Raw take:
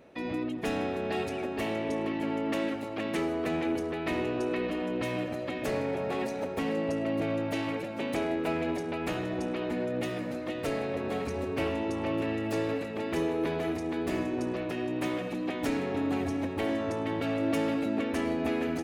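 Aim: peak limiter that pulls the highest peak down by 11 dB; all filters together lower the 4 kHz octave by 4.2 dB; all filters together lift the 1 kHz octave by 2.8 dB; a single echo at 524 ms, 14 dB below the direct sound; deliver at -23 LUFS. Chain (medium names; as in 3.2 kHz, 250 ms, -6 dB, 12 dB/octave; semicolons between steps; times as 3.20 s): peaking EQ 1 kHz +4 dB; peaking EQ 4 kHz -6.5 dB; peak limiter -28 dBFS; delay 524 ms -14 dB; trim +13 dB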